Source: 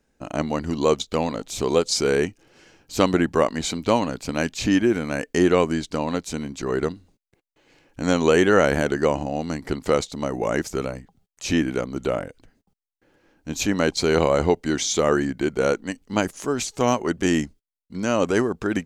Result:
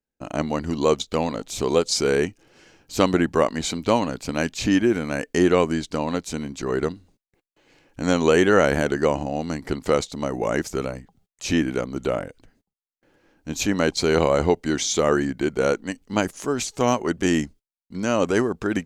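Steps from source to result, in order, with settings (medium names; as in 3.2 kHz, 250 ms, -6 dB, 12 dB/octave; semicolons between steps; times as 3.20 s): gate with hold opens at -54 dBFS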